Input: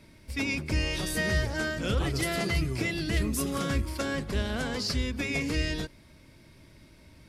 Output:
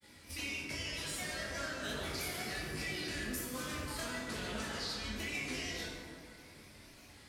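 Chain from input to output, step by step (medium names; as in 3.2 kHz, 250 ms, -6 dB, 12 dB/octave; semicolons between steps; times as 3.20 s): tilt EQ +2.5 dB/octave; compression 6:1, threshold -37 dBFS, peak gain reduction 15 dB; granulator, spray 15 ms, pitch spread up and down by 3 st; chorus 1.1 Hz, delay 19 ms, depth 5.8 ms; plate-style reverb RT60 2.2 s, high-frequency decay 0.45×, DRR -3 dB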